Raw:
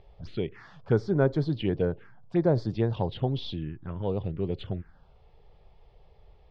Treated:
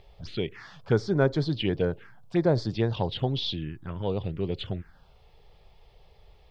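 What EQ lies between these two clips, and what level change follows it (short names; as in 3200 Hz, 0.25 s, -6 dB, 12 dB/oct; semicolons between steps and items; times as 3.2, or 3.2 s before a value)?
high shelf 2100 Hz +11.5 dB; 0.0 dB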